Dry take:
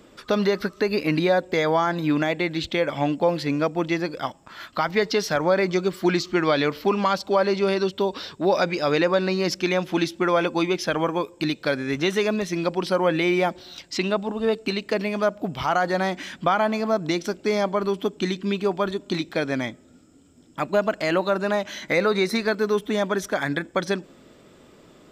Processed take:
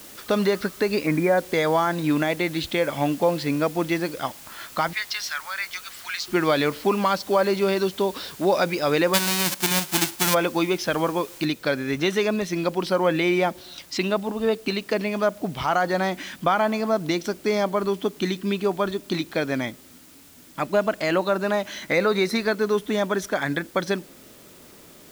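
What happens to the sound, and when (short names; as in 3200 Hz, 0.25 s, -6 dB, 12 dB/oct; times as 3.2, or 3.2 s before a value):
1.06–1.38 spectral delete 2500–7300 Hz
4.93–6.28 HPF 1300 Hz 24 dB/oct
9.13–10.33 spectral whitening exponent 0.1
11.45 noise floor step -44 dB -51 dB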